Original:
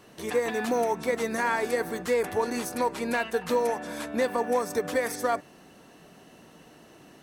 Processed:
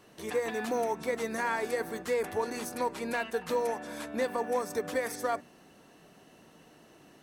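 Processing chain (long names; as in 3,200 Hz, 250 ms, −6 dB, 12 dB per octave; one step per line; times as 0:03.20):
mains-hum notches 60/120/180/240 Hz
level −4.5 dB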